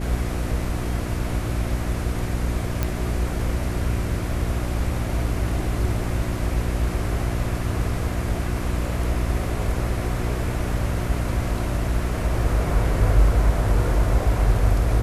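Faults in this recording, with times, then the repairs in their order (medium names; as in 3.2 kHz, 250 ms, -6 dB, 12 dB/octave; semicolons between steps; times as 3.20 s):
hum 60 Hz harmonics 6 -27 dBFS
2.83 s: pop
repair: de-click; de-hum 60 Hz, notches 6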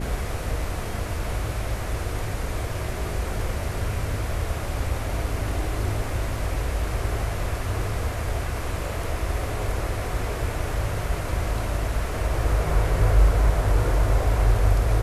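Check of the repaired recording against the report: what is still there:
nothing left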